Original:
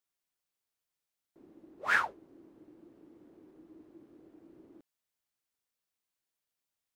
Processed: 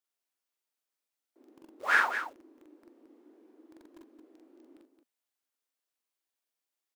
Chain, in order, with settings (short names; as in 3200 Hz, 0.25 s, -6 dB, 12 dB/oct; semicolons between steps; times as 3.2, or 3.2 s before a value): elliptic high-pass 240 Hz, stop band 40 dB; in parallel at -4 dB: requantised 8-bit, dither none; on the sum: loudspeakers at several distances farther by 15 m -2 dB, 76 m -8 dB; gain -2.5 dB